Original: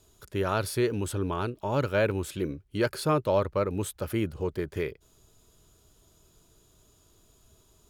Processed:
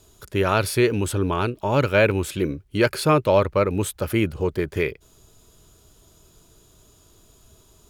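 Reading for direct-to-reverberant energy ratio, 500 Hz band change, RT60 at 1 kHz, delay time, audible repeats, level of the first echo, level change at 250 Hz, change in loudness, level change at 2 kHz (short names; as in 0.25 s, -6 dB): none, +7.0 dB, none, none, none, none, +7.0 dB, +7.5 dB, +9.5 dB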